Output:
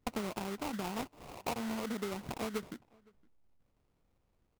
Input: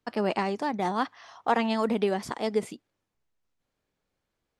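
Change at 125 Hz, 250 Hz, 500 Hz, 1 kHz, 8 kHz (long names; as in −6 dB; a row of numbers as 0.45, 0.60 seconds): −7.0, −9.0, −12.5, −12.5, 0.0 decibels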